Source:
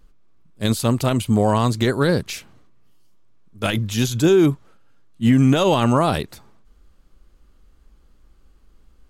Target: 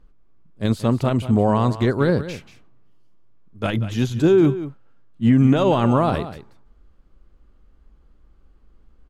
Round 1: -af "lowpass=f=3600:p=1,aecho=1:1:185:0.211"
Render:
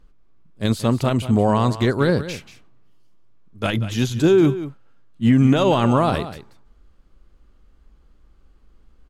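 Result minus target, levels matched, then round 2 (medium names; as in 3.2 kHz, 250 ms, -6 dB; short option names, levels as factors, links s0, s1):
4 kHz band +4.5 dB
-af "lowpass=f=1600:p=1,aecho=1:1:185:0.211"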